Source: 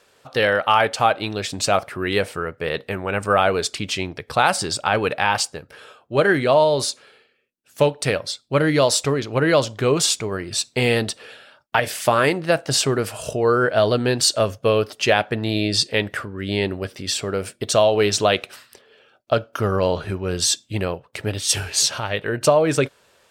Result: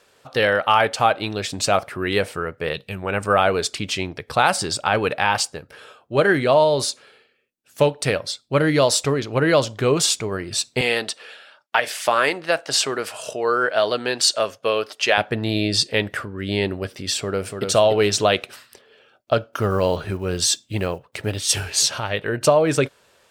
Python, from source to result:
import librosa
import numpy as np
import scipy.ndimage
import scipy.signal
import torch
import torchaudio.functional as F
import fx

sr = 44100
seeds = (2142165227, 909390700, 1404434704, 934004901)

y = fx.spec_box(x, sr, start_s=2.73, length_s=0.3, low_hz=200.0, high_hz=2300.0, gain_db=-9)
y = fx.weighting(y, sr, curve='A', at=(10.81, 15.18))
y = fx.echo_throw(y, sr, start_s=17.2, length_s=0.47, ms=290, feedback_pct=25, wet_db=-5.0)
y = fx.block_float(y, sr, bits=7, at=(19.52, 21.75))